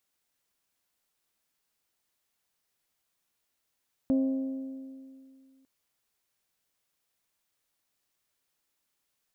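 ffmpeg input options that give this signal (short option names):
-f lavfi -i "aevalsrc='0.0891*pow(10,-3*t/2.32)*sin(2*PI*266*t)+0.0251*pow(10,-3*t/1.884)*sin(2*PI*532*t)+0.00708*pow(10,-3*t/1.784)*sin(2*PI*638.4*t)+0.002*pow(10,-3*t/1.669)*sin(2*PI*798*t)+0.000562*pow(10,-3*t/1.531)*sin(2*PI*1064*t)':d=1.55:s=44100"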